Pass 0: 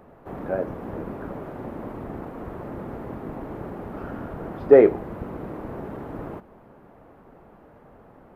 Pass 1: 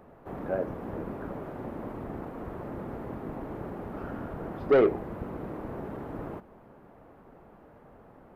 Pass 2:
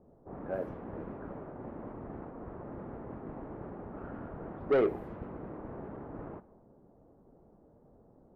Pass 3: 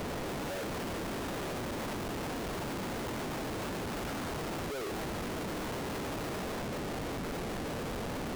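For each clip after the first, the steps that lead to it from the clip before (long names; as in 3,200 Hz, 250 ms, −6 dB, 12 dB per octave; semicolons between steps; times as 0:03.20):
soft clipping −12.5 dBFS, distortion −9 dB; level −3 dB
low-pass that shuts in the quiet parts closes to 470 Hz, open at −25.5 dBFS; level −5.5 dB
sign of each sample alone; level +2.5 dB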